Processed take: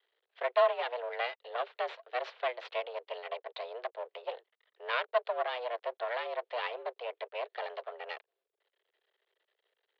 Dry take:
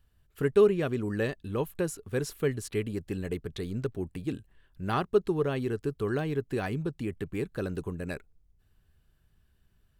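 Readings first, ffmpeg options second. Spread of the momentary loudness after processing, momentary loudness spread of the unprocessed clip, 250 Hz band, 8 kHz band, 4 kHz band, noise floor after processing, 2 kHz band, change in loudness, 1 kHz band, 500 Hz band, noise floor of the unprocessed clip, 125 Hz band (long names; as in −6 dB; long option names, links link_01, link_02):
11 LU, 10 LU, below −30 dB, below −25 dB, +3.5 dB, below −85 dBFS, +1.0 dB, −5.0 dB, +4.0 dB, −5.0 dB, −68 dBFS, below −40 dB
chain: -af "highshelf=frequency=2200:gain=9.5,aeval=exprs='max(val(0),0)':channel_layout=same,highpass=frequency=210:width_type=q:width=0.5412,highpass=frequency=210:width_type=q:width=1.307,lowpass=frequency=3600:width_type=q:width=0.5176,lowpass=frequency=3600:width_type=q:width=0.7071,lowpass=frequency=3600:width_type=q:width=1.932,afreqshift=240"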